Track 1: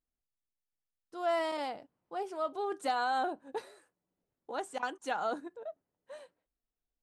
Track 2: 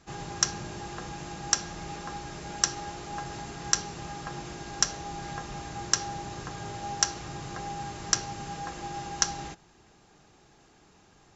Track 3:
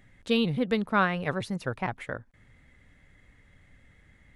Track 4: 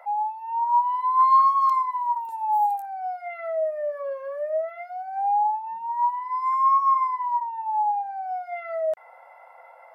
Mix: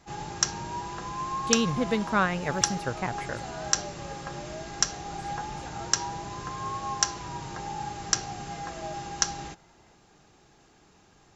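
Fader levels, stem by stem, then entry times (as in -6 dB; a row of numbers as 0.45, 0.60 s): -12.0, 0.0, -0.5, -16.5 dB; 0.55, 0.00, 1.20, 0.00 s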